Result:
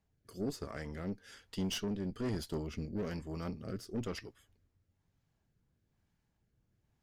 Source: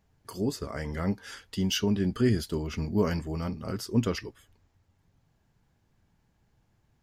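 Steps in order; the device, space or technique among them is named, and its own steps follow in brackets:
overdriven rotary cabinet (tube saturation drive 26 dB, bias 0.7; rotating-speaker cabinet horn 1.1 Hz)
level −3 dB

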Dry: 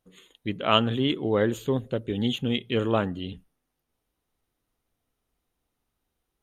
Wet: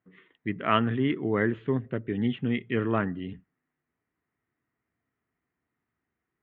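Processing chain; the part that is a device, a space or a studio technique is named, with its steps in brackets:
bass cabinet (loudspeaker in its box 80–2,200 Hz, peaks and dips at 89 Hz −4 dB, 530 Hz −9 dB, 820 Hz −6 dB, 1,900 Hz +8 dB)

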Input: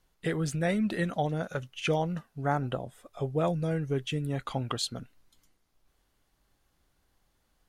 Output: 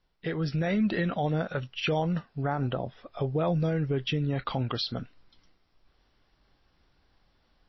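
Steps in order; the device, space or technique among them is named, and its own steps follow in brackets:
low-bitrate web radio (automatic gain control gain up to 8 dB; brickwall limiter −16.5 dBFS, peak gain reduction 8.5 dB; level −2.5 dB; MP3 24 kbit/s 16,000 Hz)

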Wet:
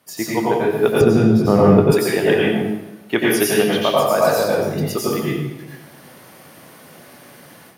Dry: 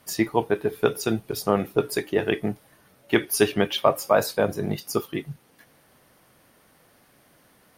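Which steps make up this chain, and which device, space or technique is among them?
far laptop microphone (convolution reverb RT60 0.90 s, pre-delay 85 ms, DRR −5.5 dB; high-pass filter 120 Hz 12 dB per octave; automatic gain control gain up to 12 dB)
0:01.01–0:01.92: RIAA equalisation playback
level −3 dB

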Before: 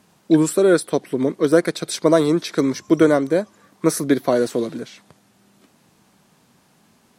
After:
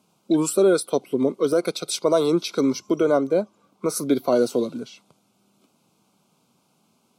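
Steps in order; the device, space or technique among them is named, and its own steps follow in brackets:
PA system with an anti-feedback notch (high-pass filter 120 Hz; Butterworth band-reject 1,800 Hz, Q 2.3; brickwall limiter −8.5 dBFS, peak gain reduction 6.5 dB)
noise reduction from a noise print of the clip's start 7 dB
0:02.94–0:03.96: high-shelf EQ 3,900 Hz −6.5 dB

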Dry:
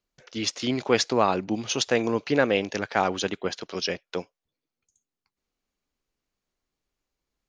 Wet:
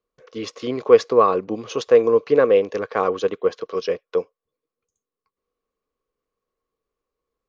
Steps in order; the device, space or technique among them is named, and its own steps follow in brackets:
inside a helmet (high-shelf EQ 4,300 Hz −9 dB; hollow resonant body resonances 470/1,100 Hz, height 17 dB, ringing for 35 ms)
level −3.5 dB

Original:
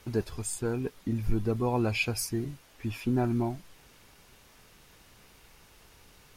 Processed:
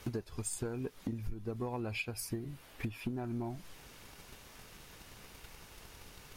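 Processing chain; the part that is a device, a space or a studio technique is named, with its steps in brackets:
drum-bus smash (transient designer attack +8 dB, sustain 0 dB; downward compressor 16 to 1, threshold −35 dBFS, peak gain reduction 22 dB; soft clipping −29 dBFS, distortion −18 dB)
0:01.80–0:03.10: parametric band 6,200 Hz −5.5 dB 0.69 octaves
level +2.5 dB

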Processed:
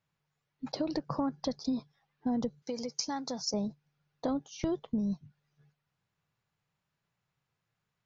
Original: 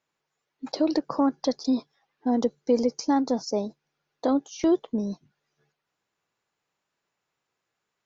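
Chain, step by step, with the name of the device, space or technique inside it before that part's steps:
jukebox (low-pass filter 6,100 Hz 12 dB per octave; low shelf with overshoot 210 Hz +12 dB, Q 1.5; downward compressor 6 to 1, threshold −24 dBFS, peak gain reduction 7.5 dB)
0:02.62–0:03.54: spectral tilt +3.5 dB per octave
level −4 dB

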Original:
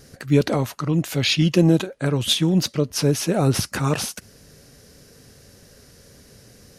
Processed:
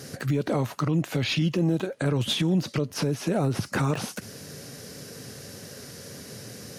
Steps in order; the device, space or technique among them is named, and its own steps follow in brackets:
podcast mastering chain (high-pass filter 100 Hz 24 dB per octave; de-essing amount 90%; downward compressor 3 to 1, threshold −28 dBFS, peak gain reduction 12.5 dB; brickwall limiter −24.5 dBFS, peak gain reduction 7.5 dB; level +8.5 dB; MP3 96 kbit/s 44,100 Hz)

